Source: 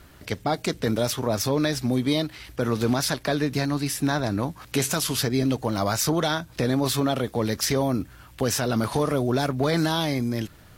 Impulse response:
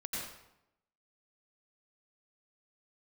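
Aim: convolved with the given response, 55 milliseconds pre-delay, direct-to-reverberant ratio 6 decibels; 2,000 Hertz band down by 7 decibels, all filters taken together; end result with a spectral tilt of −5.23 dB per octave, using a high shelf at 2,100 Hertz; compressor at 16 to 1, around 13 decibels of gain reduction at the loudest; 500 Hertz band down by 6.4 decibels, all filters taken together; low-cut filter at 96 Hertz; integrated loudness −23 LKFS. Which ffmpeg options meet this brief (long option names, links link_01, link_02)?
-filter_complex "[0:a]highpass=96,equalizer=frequency=500:width_type=o:gain=-7.5,equalizer=frequency=2000:width_type=o:gain=-5,highshelf=frequency=2100:gain=-7,acompressor=threshold=-34dB:ratio=16,asplit=2[link_01][link_02];[1:a]atrim=start_sample=2205,adelay=55[link_03];[link_02][link_03]afir=irnorm=-1:irlink=0,volume=-8dB[link_04];[link_01][link_04]amix=inputs=2:normalize=0,volume=15.5dB"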